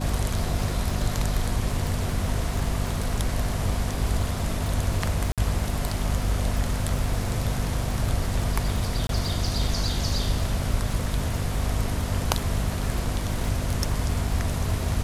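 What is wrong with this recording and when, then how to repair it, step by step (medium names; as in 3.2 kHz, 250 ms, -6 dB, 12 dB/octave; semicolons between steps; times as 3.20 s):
crackle 40 per s -29 dBFS
hum 50 Hz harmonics 5 -30 dBFS
5.32–5.38 s: dropout 57 ms
9.07–9.09 s: dropout 22 ms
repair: de-click; de-hum 50 Hz, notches 5; interpolate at 5.32 s, 57 ms; interpolate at 9.07 s, 22 ms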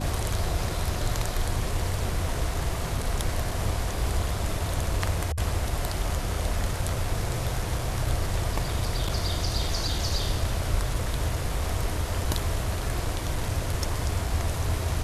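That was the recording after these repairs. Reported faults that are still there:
nothing left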